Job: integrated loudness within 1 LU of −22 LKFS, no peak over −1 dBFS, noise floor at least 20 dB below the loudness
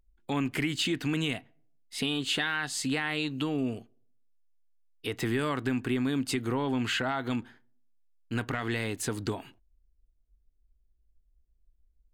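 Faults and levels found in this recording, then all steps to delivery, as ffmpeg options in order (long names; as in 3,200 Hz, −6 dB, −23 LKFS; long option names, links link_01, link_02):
integrated loudness −31.0 LKFS; sample peak −17.5 dBFS; target loudness −22.0 LKFS
→ -af "volume=9dB"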